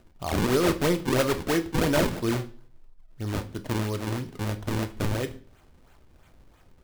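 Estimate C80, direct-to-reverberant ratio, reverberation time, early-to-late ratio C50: 20.5 dB, 8.0 dB, 0.45 s, 15.5 dB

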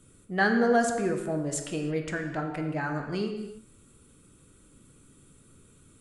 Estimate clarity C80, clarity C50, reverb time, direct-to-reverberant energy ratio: 7.5 dB, 6.0 dB, no single decay rate, 3.0 dB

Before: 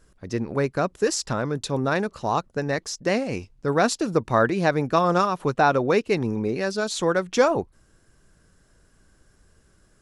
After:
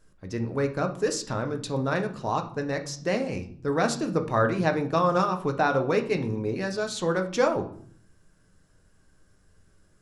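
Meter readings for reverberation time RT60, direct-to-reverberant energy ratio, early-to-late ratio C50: 0.55 s, 5.0 dB, 12.5 dB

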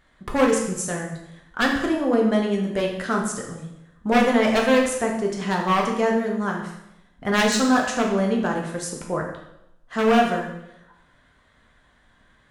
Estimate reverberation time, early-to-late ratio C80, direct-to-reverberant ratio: 0.85 s, 7.5 dB, -0.5 dB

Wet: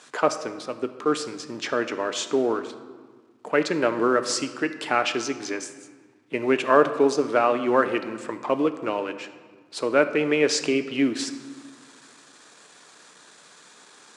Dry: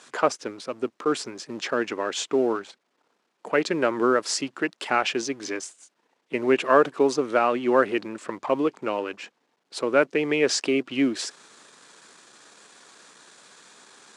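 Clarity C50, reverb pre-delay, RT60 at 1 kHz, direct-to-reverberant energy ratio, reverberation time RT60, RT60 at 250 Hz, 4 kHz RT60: 11.5 dB, 7 ms, 1.5 s, 9.0 dB, 1.5 s, 2.1 s, 1.0 s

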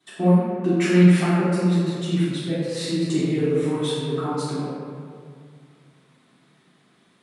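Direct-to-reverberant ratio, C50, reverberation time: -16.0 dB, -4.0 dB, 2.2 s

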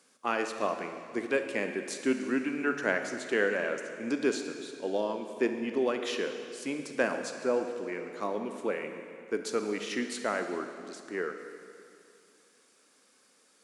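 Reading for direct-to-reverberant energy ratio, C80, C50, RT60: 6.0 dB, 7.5 dB, 6.5 dB, 2.4 s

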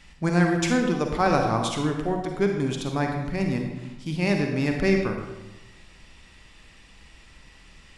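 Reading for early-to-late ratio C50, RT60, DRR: 3.5 dB, 1.0 s, 2.5 dB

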